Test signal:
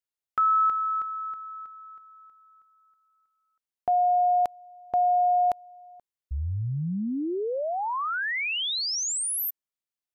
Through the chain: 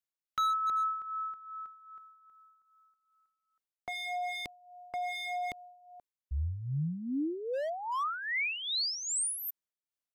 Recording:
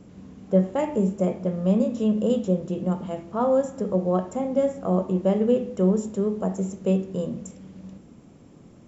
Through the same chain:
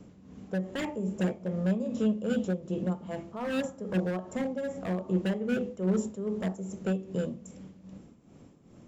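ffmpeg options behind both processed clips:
-filter_complex "[0:a]tremolo=f=2.5:d=0.68,acrossover=split=420|1300[s0][s1][s2];[s1]aeval=exprs='0.0282*(abs(mod(val(0)/0.0282+3,4)-2)-1)':c=same[s3];[s0][s3][s2]amix=inputs=3:normalize=0,volume=0.794"

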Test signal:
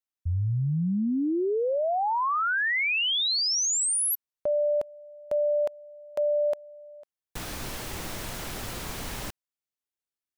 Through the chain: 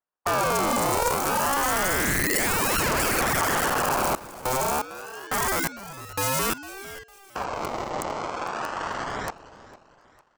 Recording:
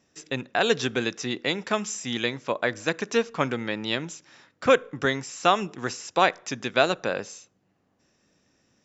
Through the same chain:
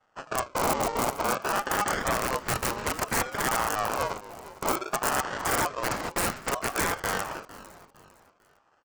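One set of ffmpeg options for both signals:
-af "highpass=68,agate=range=0.398:threshold=0.00708:ratio=3:release=349:detection=rms,adynamicequalizer=threshold=0.00501:dfrequency=280:dqfactor=7.9:tfrequency=280:tqfactor=7.9:attack=5:release=100:ratio=0.375:range=2:mode=boostabove:tftype=bell,acontrast=82,alimiter=limit=0.251:level=0:latency=1:release=54,acrusher=samples=32:mix=1:aa=0.000001:lfo=1:lforange=32:lforate=0.28,aresample=16000,aresample=44100,aeval=exprs='(mod(8.91*val(0)+1,2)-1)/8.91':c=same,asuperstop=centerf=2800:order=4:qfactor=3.4,aecho=1:1:454|908|1362:0.141|0.0509|0.0183,aeval=exprs='val(0)*sin(2*PI*860*n/s+860*0.2/0.57*sin(2*PI*0.57*n/s))':c=same,volume=1.26"

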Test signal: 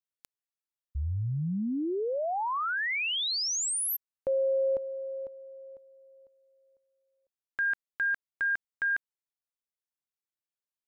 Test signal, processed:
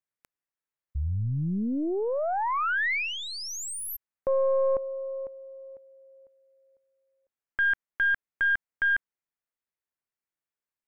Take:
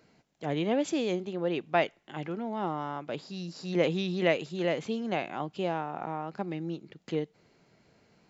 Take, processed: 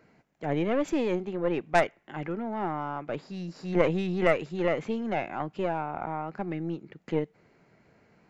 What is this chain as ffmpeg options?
-af "aeval=exprs='0.299*(cos(1*acos(clip(val(0)/0.299,-1,1)))-cos(1*PI/2))+0.0668*(cos(3*acos(clip(val(0)/0.299,-1,1)))-cos(3*PI/2))+0.0422*(cos(4*acos(clip(val(0)/0.299,-1,1)))-cos(4*PI/2))+0.0422*(cos(5*acos(clip(val(0)/0.299,-1,1)))-cos(5*PI/2))+0.0133*(cos(7*acos(clip(val(0)/0.299,-1,1)))-cos(7*PI/2))':c=same,highshelf=f=2700:t=q:w=1.5:g=-7,volume=1.78"

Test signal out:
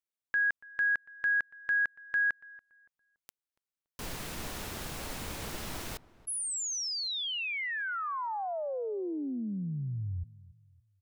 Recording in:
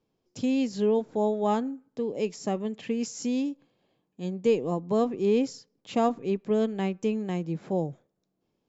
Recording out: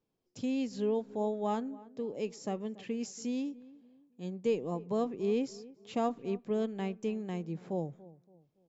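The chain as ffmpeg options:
-filter_complex "[0:a]asplit=2[s0][s1];[s1]adelay=284,lowpass=f=1300:p=1,volume=0.112,asplit=2[s2][s3];[s3]adelay=284,lowpass=f=1300:p=1,volume=0.38,asplit=2[s4][s5];[s5]adelay=284,lowpass=f=1300:p=1,volume=0.38[s6];[s0][s2][s4][s6]amix=inputs=4:normalize=0,volume=0.447"

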